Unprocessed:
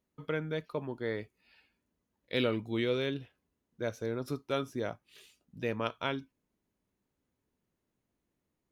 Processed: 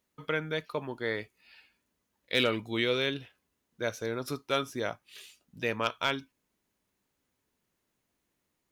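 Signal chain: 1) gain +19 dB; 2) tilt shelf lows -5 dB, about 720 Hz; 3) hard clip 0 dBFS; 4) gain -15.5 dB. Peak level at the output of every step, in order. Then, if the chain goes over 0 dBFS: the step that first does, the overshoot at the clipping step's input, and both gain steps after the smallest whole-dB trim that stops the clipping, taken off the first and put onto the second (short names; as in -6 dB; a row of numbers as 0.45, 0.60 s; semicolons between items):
+2.0, +5.5, 0.0, -15.5 dBFS; step 1, 5.5 dB; step 1 +13 dB, step 4 -9.5 dB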